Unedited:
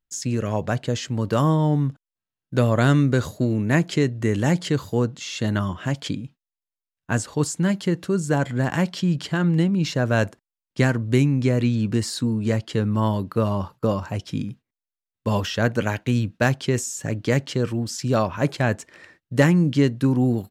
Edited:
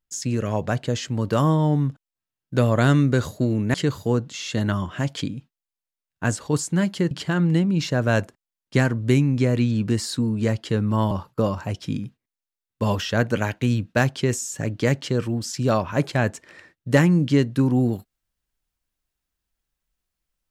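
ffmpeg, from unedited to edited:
-filter_complex "[0:a]asplit=4[a][b][c][d];[a]atrim=end=3.742[e];[b]atrim=start=4.608:end=7.982[f];[c]atrim=start=9.148:end=13.152[g];[d]atrim=start=13.558[h];[e][f]acrossfade=d=0.004:c1=hsin:c2=hsin[i];[i][g]acrossfade=d=0.004:c1=hsin:c2=hsin[j];[j][h]acrossfade=d=0.004:c1=hsin:c2=hsin"

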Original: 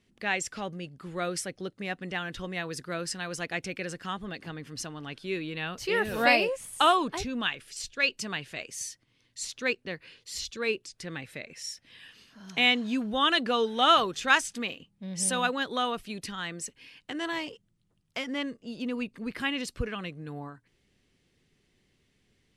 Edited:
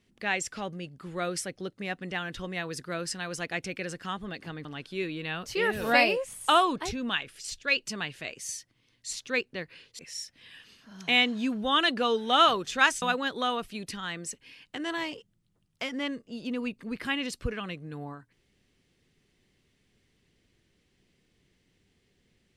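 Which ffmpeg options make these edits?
-filter_complex "[0:a]asplit=4[a][b][c][d];[a]atrim=end=4.652[e];[b]atrim=start=4.968:end=10.312[f];[c]atrim=start=11.478:end=14.512[g];[d]atrim=start=15.368[h];[e][f]acrossfade=d=0.004:c1=hsin:c2=hsin[i];[i][g]acrossfade=d=0.004:c1=hsin:c2=hsin[j];[j][h]acrossfade=d=0.004:c1=hsin:c2=hsin"

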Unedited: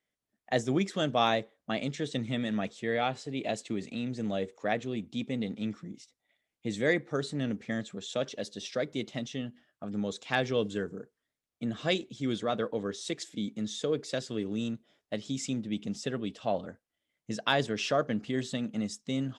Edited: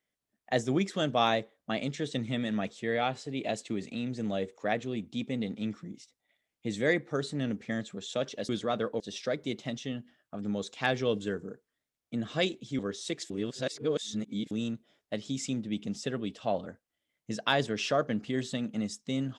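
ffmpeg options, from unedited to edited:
-filter_complex "[0:a]asplit=6[a][b][c][d][e][f];[a]atrim=end=8.492[g];[b]atrim=start=12.278:end=12.792[h];[c]atrim=start=8.488:end=12.282[i];[d]atrim=start=12.788:end=13.302[j];[e]atrim=start=13.298:end=14.512,asetpts=PTS-STARTPTS,areverse[k];[f]atrim=start=14.508[l];[g][h]acrossfade=d=0.004:c1=hsin:c2=hsin[m];[m][i]acrossfade=d=0.004:c1=hsin:c2=hsin[n];[n][j]acrossfade=d=0.004:c1=hsin:c2=hsin[o];[o][k]acrossfade=d=0.004:c1=hsin:c2=hsin[p];[p][l]acrossfade=d=0.004:c1=hsin:c2=hsin"

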